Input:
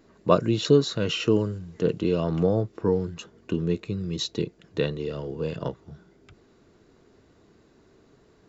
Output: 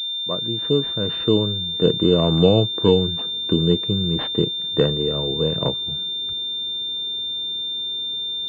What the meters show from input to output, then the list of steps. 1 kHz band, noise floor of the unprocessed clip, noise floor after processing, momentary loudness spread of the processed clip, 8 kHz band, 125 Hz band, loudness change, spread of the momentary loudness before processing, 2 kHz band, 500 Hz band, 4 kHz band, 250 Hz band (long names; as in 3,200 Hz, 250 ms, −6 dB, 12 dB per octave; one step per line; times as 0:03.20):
+1.0 dB, −59 dBFS, −27 dBFS, 7 LU, can't be measured, +5.5 dB, +5.5 dB, 11 LU, −1.5 dB, +4.5 dB, +17.0 dB, +5.0 dB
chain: fade in at the beginning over 2.13 s
switching amplifier with a slow clock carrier 3,600 Hz
level +7.5 dB